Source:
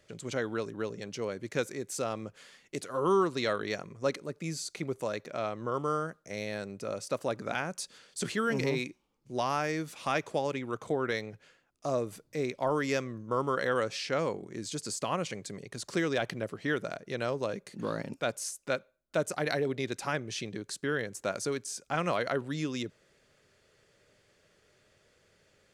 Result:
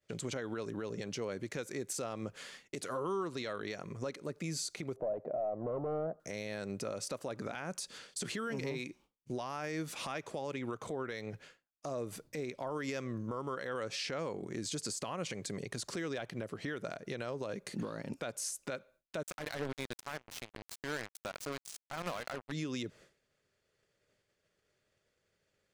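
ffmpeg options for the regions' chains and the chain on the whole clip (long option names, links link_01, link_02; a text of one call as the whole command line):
ffmpeg -i in.wav -filter_complex "[0:a]asettb=1/sr,asplit=3[link_01][link_02][link_03];[link_01]atrim=end=4.964[link_04];[link_02]atrim=start=4.96:end=6.2,asetpts=PTS-STARTPTS,afade=type=in:duration=0.004:curve=qsin,afade=type=out:start_time=1.236:duration=0.004:curve=qsin,asoftclip=type=hard:threshold=-34dB,lowpass=frequency=670:width_type=q:width=5.8[link_05];[link_03]atrim=start=6.196[link_06];[link_04][link_05]acrossfade=duration=0.004:curve1=hsin:curve2=qsin[link_07];[link_07][link_06]acrossfade=duration=0.004:curve1=qsin:curve2=hsin,asettb=1/sr,asplit=3[link_08][link_09][link_10];[link_08]atrim=end=19.234[link_11];[link_09]atrim=start=19.23:end=22.52,asetpts=PTS-STARTPTS,afade=type=in:duration=0.004:curve=qsin,afade=type=out:start_time=3.286:duration=0.004:curve=qsin,equalizer=frequency=400:width_type=o:width=0.77:gain=-4,acrusher=bits=4:mix=0:aa=0.5[link_12];[link_10]atrim=start=22.516[link_13];[link_11][link_12]acrossfade=duration=0.004:curve1=hsin:curve2=qsin[link_14];[link_14][link_13]acrossfade=duration=0.004:curve1=qsin:curve2=hsin,agate=range=-33dB:threshold=-54dB:ratio=3:detection=peak,acompressor=threshold=-39dB:ratio=3,alimiter=level_in=10dB:limit=-24dB:level=0:latency=1:release=106,volume=-10dB,volume=5.5dB" out.wav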